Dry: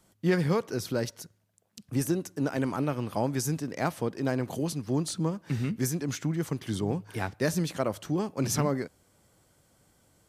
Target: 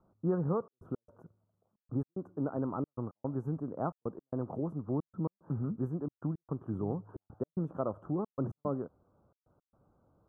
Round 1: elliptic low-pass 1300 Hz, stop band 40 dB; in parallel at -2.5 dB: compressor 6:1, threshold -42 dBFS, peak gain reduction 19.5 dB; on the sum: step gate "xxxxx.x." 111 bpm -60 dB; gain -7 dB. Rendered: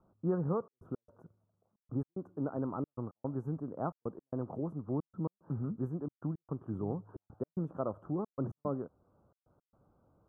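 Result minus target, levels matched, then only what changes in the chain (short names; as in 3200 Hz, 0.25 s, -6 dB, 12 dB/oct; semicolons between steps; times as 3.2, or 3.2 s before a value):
compressor: peak gain reduction +9 dB
change: compressor 6:1, threshold -31.5 dBFS, peak gain reduction 11 dB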